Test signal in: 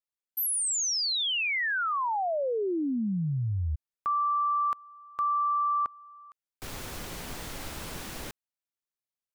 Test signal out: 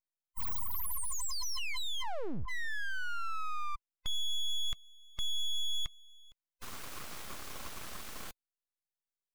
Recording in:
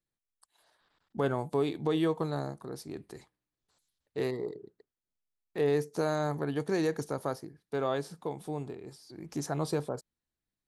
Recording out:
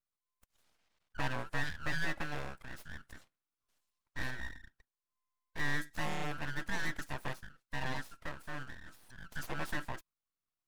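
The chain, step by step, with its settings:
neighbouring bands swapped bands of 500 Hz
full-wave rectification
level −3.5 dB

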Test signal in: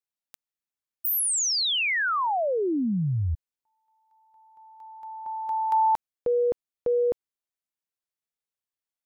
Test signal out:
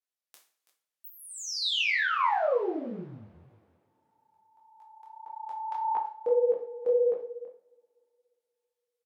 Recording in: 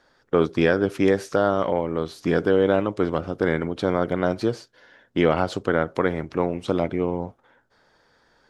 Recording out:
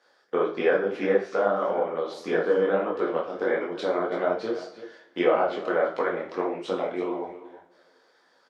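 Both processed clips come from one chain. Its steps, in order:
high-pass filter 380 Hz 12 dB per octave
treble cut that deepens with the level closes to 2,000 Hz, closed at −20 dBFS
on a send: single-tap delay 330 ms −15 dB
on the sum: coupled-rooms reverb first 0.39 s, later 2.7 s, from −28 dB, DRR 1 dB
micro pitch shift up and down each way 58 cents

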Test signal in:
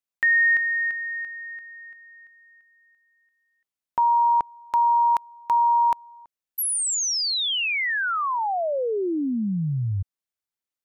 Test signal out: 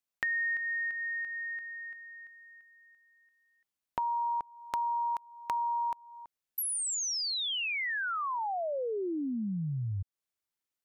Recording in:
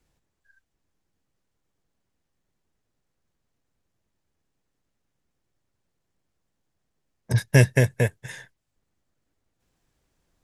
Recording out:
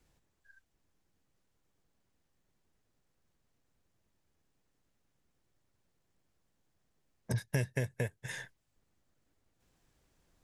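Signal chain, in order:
downward compressor 3 to 1, threshold −35 dBFS

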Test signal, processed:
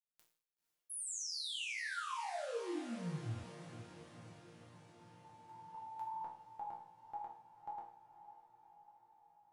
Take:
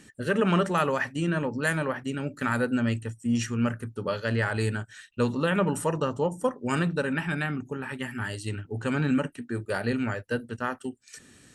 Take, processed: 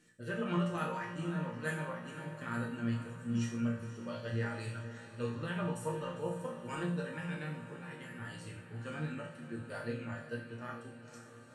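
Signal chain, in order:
resonators tuned to a chord A#2 sus4, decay 0.54 s
flanger 1.9 Hz, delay 2.3 ms, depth 6.3 ms, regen −76%
feedback delay with all-pass diffusion 508 ms, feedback 65%, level −12 dB
level +9 dB

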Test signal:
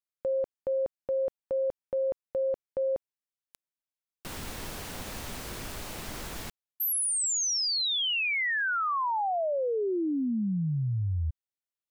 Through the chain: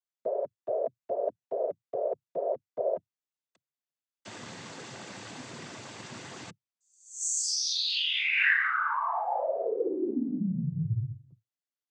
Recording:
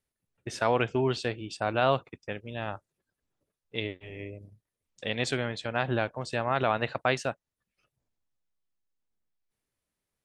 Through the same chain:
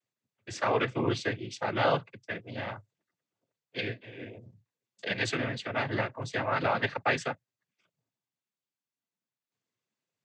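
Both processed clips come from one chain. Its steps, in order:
dynamic equaliser 1,900 Hz, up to +7 dB, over −49 dBFS, Q 3
cochlear-implant simulation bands 16
level −1.5 dB

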